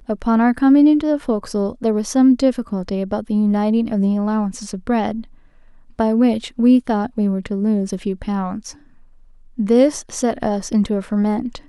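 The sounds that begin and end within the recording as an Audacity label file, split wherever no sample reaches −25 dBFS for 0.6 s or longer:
5.990000	8.700000	sound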